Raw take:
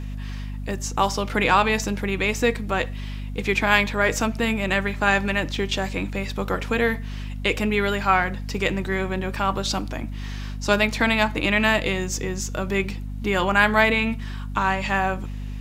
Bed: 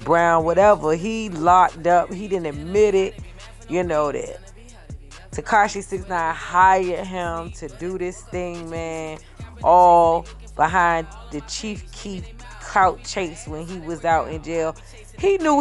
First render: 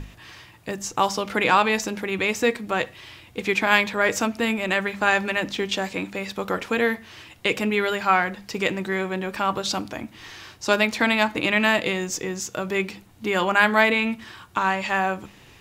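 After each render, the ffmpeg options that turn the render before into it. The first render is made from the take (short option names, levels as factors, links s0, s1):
-af "bandreject=f=50:t=h:w=6,bandreject=f=100:t=h:w=6,bandreject=f=150:t=h:w=6,bandreject=f=200:t=h:w=6,bandreject=f=250:t=h:w=6"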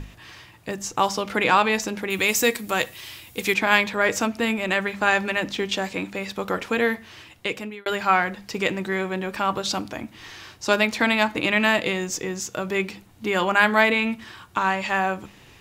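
-filter_complex "[0:a]asettb=1/sr,asplit=3[s0][s1][s2];[s0]atrim=end=2.104[s3];[s1]atrim=start=2.1:end=3.54,asetpts=PTS-STARTPTS,afade=t=in:d=0.004:c=qsin,afade=t=out:st=1.436:d=0.004:c=qsin,aemphasis=mode=production:type=75fm[s4];[s2]atrim=start=3.536[s5];[s3][s4]acrossfade=d=0.004:c1=hsin:c2=qsin[s6];[s6][s5]acrossfade=d=0.004:c1=qsin:c2=hsin,asplit=2[s7][s8];[s7]atrim=end=7.86,asetpts=PTS-STARTPTS,afade=t=out:st=6.94:d=0.92:c=qsin[s9];[s8]atrim=start=7.86,asetpts=PTS-STARTPTS,afade=t=in:d=0.004:c=hsin[s10];[s9][s10]concat=n=2:v=0:a=1"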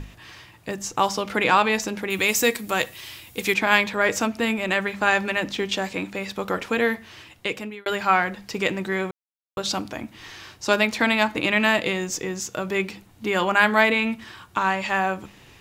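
-filter_complex "[0:a]asplit=3[s0][s1][s2];[s0]atrim=end=9.11,asetpts=PTS-STARTPTS,afade=t=out:st=9.106:d=0.004:c=hsin[s3];[s1]atrim=start=9.11:end=9.57,asetpts=PTS-STARTPTS,volume=0[s4];[s2]atrim=start=9.57,asetpts=PTS-STARTPTS,afade=t=in:d=0.004:c=hsin[s5];[s3][s4][s5]concat=n=3:v=0:a=1"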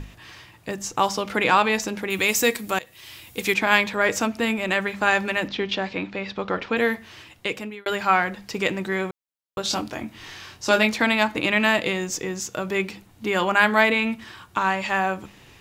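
-filter_complex "[0:a]asettb=1/sr,asplit=3[s0][s1][s2];[s0]atrim=end=5.484[s3];[s1]atrim=start=5.48:end=6.77,asetpts=PTS-STARTPTS,afade=t=in:d=0.004:c=qsin,afade=t=out:st=1.286:d=0.004:c=qsin,lowpass=f=4800:w=0.5412,lowpass=f=4800:w=1.3066[s4];[s2]atrim=start=6.766[s5];[s3][s4]acrossfade=d=0.004:c1=hsin:c2=qsin[s6];[s6][s5]acrossfade=d=0.004:c1=qsin:c2=hsin,asettb=1/sr,asplit=3[s7][s8][s9];[s7]atrim=end=9.634[s10];[s8]atrim=start=9.63:end=10.96,asetpts=PTS-STARTPTS,afade=t=in:d=0.004:c=qsin,afade=t=out:st=1.326:d=0.004:c=qsin,asplit=2[s11][s12];[s12]adelay=23,volume=0.562[s13];[s11][s13]amix=inputs=2:normalize=0,atrim=end_sample=58653[s14];[s9]atrim=start=10.956[s15];[s10][s14]acrossfade=d=0.004:c1=hsin:c2=qsin[s16];[s16][s15]acrossfade=d=0.004:c1=qsin:c2=hsin,asplit=2[s17][s18];[s17]atrim=end=2.79,asetpts=PTS-STARTPTS,afade=t=out:st=2.786:d=0.004:c=hsin:silence=0.0841395[s19];[s18]atrim=start=2.79,asetpts=PTS-STARTPTS,afade=t=in:d=0.46:silence=0.0841395[s20];[s19][s20]concat=n=2:v=0:a=1"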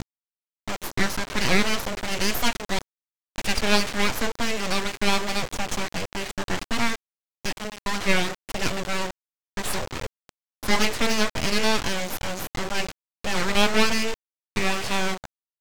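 -af "aresample=16000,acrusher=bits=4:mix=0:aa=0.000001,aresample=44100,aeval=exprs='abs(val(0))':c=same"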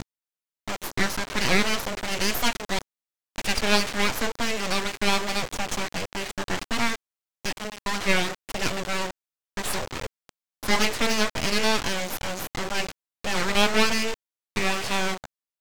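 -af "lowshelf=f=230:g=-3"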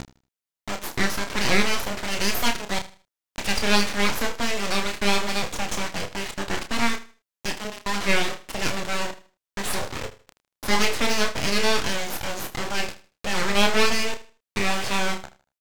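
-filter_complex "[0:a]asplit=2[s0][s1];[s1]adelay=30,volume=0.447[s2];[s0][s2]amix=inputs=2:normalize=0,aecho=1:1:78|156|234:0.158|0.0444|0.0124"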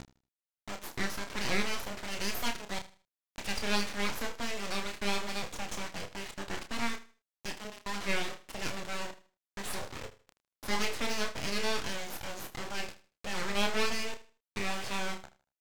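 -af "volume=0.299"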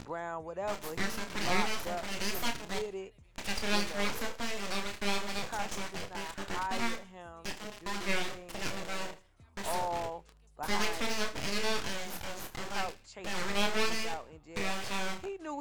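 -filter_complex "[1:a]volume=0.075[s0];[0:a][s0]amix=inputs=2:normalize=0"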